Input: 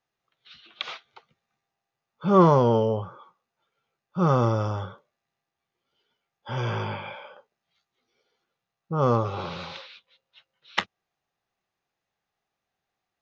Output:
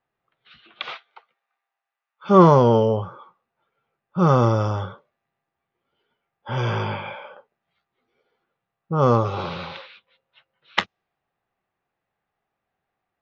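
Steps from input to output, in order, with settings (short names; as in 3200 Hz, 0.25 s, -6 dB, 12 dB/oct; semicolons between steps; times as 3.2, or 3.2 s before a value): low-pass opened by the level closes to 2200 Hz, open at -20 dBFS; 0.94–2.29 HPF 530 Hz -> 1400 Hz 12 dB/oct; gain +4.5 dB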